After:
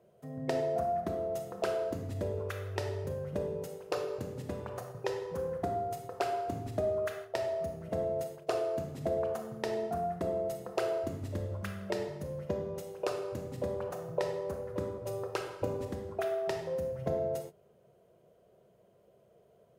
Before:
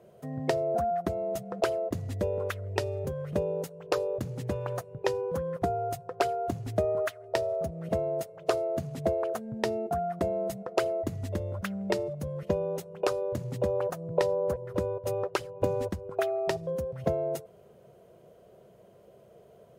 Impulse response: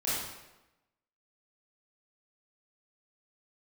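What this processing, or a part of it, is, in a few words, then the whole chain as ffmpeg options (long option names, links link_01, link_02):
keyed gated reverb: -filter_complex "[0:a]asplit=3[link_01][link_02][link_03];[1:a]atrim=start_sample=2205[link_04];[link_02][link_04]afir=irnorm=-1:irlink=0[link_05];[link_03]apad=whole_len=872555[link_06];[link_05][link_06]sidechaingate=range=-33dB:threshold=-45dB:ratio=16:detection=peak,volume=-8dB[link_07];[link_01][link_07]amix=inputs=2:normalize=0,volume=-8.5dB"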